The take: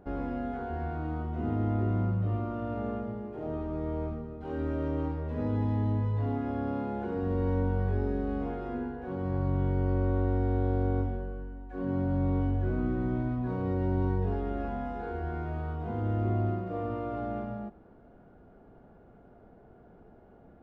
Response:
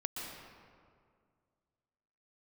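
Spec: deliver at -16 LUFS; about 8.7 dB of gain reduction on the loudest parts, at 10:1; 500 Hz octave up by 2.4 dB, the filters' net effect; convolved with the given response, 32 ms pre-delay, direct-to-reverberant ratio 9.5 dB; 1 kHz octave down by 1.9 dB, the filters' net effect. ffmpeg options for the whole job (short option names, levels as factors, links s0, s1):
-filter_complex "[0:a]equalizer=f=500:t=o:g=4.5,equalizer=f=1000:t=o:g=-6,acompressor=threshold=0.0251:ratio=10,asplit=2[s0][s1];[1:a]atrim=start_sample=2205,adelay=32[s2];[s1][s2]afir=irnorm=-1:irlink=0,volume=0.282[s3];[s0][s3]amix=inputs=2:normalize=0,volume=10.6"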